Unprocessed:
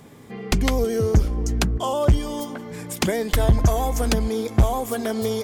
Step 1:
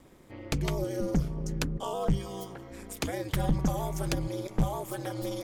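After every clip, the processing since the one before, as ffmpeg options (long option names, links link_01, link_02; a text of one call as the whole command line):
ffmpeg -i in.wav -af "aeval=exprs='val(0)*sin(2*PI*100*n/s)':channel_layout=same,volume=-7dB" out.wav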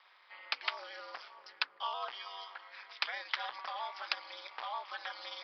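ffmpeg -i in.wav -af "aresample=11025,aeval=exprs='clip(val(0),-1,0.0708)':channel_layout=same,aresample=44100,highpass=frequency=1000:width=0.5412,highpass=frequency=1000:width=1.3066,volume=4dB" out.wav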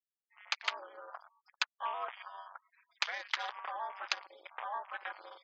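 ffmpeg -i in.wav -af "afwtdn=0.00631,afftfilt=real='re*gte(hypot(re,im),0.00112)':imag='im*gte(hypot(re,im),0.00112)':win_size=1024:overlap=0.75,volume=1dB" out.wav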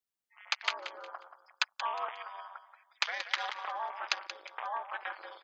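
ffmpeg -i in.wav -af "aecho=1:1:180|360|540:0.282|0.0817|0.0237,volume=2.5dB" out.wav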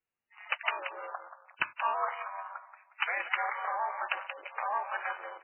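ffmpeg -i in.wav -af "asoftclip=type=tanh:threshold=-18.5dB,volume=5dB" -ar 8000 -c:a libmp3lame -b:a 8k out.mp3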